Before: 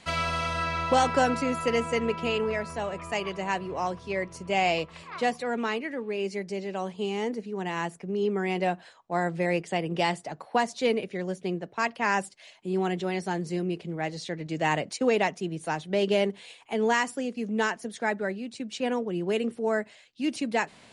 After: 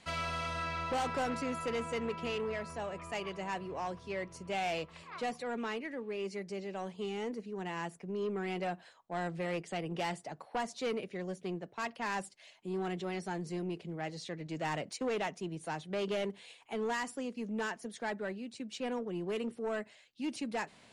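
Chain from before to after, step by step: soft clip -22.5 dBFS, distortion -12 dB; gain -6.5 dB

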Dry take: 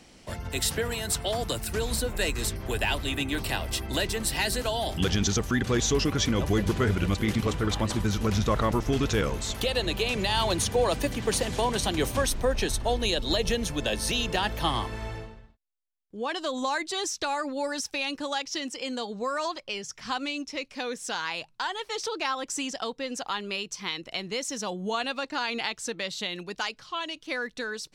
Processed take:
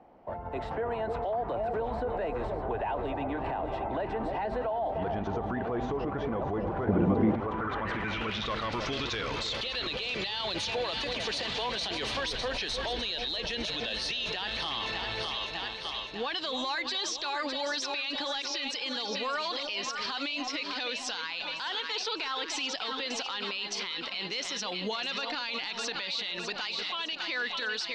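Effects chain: overdrive pedal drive 11 dB, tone 6100 Hz, clips at -13 dBFS; AGC gain up to 5 dB; dynamic EQ 2500 Hz, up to +4 dB, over -34 dBFS, Q 0.75; low-pass sweep 800 Hz -> 4300 Hz, 7.37–8.55; on a send: echo with dull and thin repeats by turns 0.302 s, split 830 Hz, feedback 72%, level -8 dB; on the sum: limiter -18.5 dBFS, peak gain reduction 18 dB; 6.87–7.35 bell 230 Hz +12 dB 1.8 oct; gain -6 dB

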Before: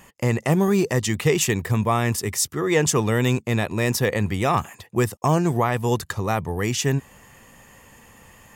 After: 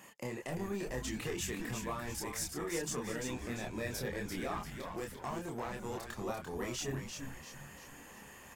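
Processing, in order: 4.51–6.2 half-wave gain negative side -12 dB; HPF 170 Hz 12 dB/oct; compressor 2.5:1, threshold -35 dBFS, peak gain reduction 13.5 dB; soft clip -24.5 dBFS, distortion -17 dB; chorus voices 6, 0.45 Hz, delay 27 ms, depth 3.5 ms; frequency-shifting echo 0.343 s, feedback 43%, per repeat -140 Hz, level -5.5 dB; gain -1.5 dB

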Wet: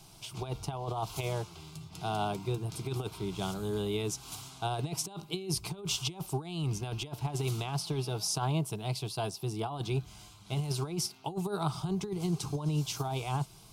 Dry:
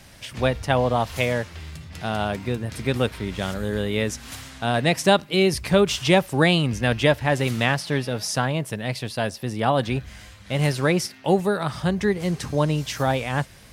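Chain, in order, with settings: negative-ratio compressor -23 dBFS, ratio -0.5; fixed phaser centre 360 Hz, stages 8; gain -6 dB

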